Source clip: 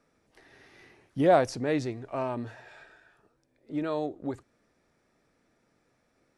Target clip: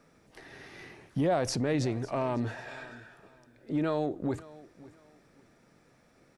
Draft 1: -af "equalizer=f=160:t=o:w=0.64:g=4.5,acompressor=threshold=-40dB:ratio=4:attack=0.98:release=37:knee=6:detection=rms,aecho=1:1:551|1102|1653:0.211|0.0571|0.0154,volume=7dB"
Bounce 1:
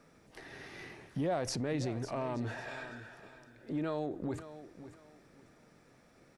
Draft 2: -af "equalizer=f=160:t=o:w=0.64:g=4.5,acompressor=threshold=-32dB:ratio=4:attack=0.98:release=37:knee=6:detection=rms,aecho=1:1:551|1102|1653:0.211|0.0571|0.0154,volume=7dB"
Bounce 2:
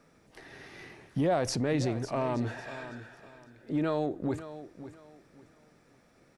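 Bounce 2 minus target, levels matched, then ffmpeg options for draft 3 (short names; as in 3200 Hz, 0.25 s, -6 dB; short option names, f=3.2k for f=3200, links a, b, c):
echo-to-direct +6.5 dB
-af "equalizer=f=160:t=o:w=0.64:g=4.5,acompressor=threshold=-32dB:ratio=4:attack=0.98:release=37:knee=6:detection=rms,aecho=1:1:551|1102:0.1|0.027,volume=7dB"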